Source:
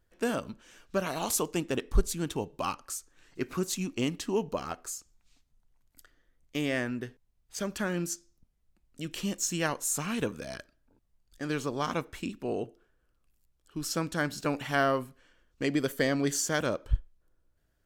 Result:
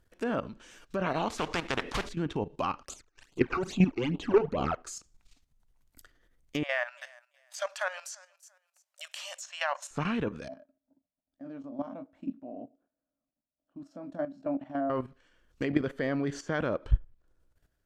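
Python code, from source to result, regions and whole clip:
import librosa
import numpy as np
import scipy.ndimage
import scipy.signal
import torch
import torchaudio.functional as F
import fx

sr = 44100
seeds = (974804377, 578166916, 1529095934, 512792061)

y = fx.chain(x, sr, fx.mod_noise(seeds[0], snr_db=24),
    fx.spectral_comp(ratio=4.0), at=(1.38, 2.09))
y = fx.chain(y, sr, fx.bass_treble(bass_db=-3, treble_db=2),
    fx.leveller(passes=3),
    fx.phaser_stages(stages=12, low_hz=170.0, high_hz=1900.0, hz=2.4, feedback_pct=15), at=(2.83, 4.77))
y = fx.chain(y, sr, fx.brickwall_highpass(low_hz=540.0),
    fx.echo_feedback(ms=340, feedback_pct=25, wet_db=-22.5), at=(6.63, 9.91))
y = fx.chain(y, sr, fx.double_bandpass(hz=410.0, octaves=1.2),
    fx.doubler(ms=22.0, db=-7.5), at=(10.48, 14.9))
y = fx.env_lowpass_down(y, sr, base_hz=2200.0, full_db=-27.5)
y = fx.level_steps(y, sr, step_db=12)
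y = y * librosa.db_to_amplitude(6.5)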